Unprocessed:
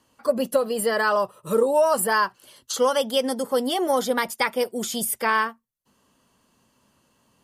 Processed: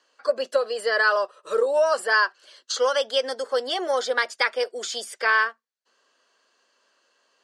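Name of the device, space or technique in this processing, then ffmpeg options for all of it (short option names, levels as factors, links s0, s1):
phone speaker on a table: -af "highpass=f=420:w=0.5412,highpass=f=420:w=1.3066,equalizer=f=890:t=q:w=4:g=-7,equalizer=f=1600:t=q:w=4:g=7,equalizer=f=4400:t=q:w=4:g=5,lowpass=f=7100:w=0.5412,lowpass=f=7100:w=1.3066"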